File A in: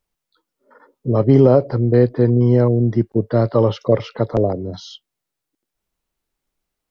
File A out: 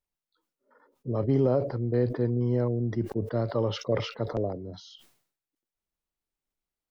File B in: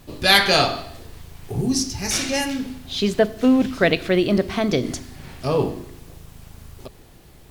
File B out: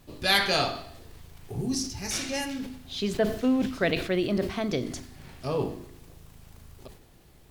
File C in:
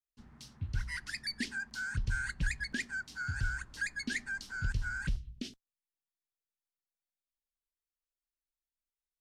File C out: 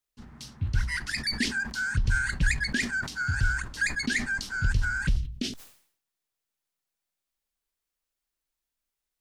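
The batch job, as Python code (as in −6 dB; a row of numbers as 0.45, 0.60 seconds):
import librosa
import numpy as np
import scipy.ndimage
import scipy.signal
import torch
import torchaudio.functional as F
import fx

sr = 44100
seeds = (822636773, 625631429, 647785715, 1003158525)

y = fx.sustainer(x, sr, db_per_s=100.0)
y = y * 10.0 ** (-30 / 20.0) / np.sqrt(np.mean(np.square(y)))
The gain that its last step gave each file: −12.5, −8.0, +8.0 decibels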